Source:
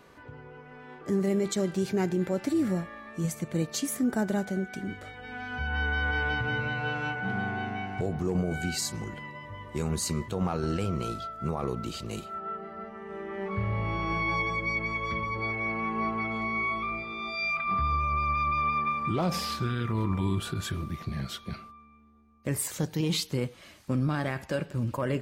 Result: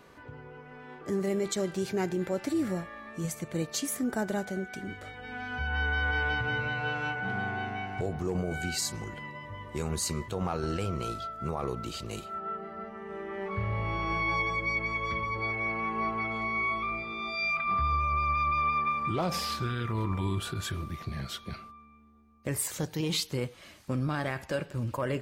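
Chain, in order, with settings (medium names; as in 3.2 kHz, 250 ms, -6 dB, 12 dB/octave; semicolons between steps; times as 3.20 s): dynamic bell 200 Hz, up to -5 dB, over -42 dBFS, Q 1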